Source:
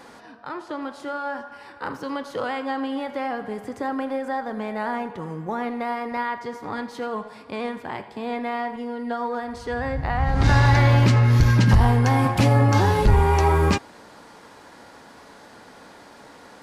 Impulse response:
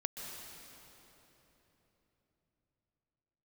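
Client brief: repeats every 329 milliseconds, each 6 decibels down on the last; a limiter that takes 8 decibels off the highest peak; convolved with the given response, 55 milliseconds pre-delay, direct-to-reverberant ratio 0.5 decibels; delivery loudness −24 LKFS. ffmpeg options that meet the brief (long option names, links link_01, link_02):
-filter_complex "[0:a]alimiter=limit=-17dB:level=0:latency=1,aecho=1:1:329|658|987|1316|1645|1974:0.501|0.251|0.125|0.0626|0.0313|0.0157,asplit=2[link_01][link_02];[1:a]atrim=start_sample=2205,adelay=55[link_03];[link_02][link_03]afir=irnorm=-1:irlink=0,volume=-1.5dB[link_04];[link_01][link_04]amix=inputs=2:normalize=0,volume=1dB"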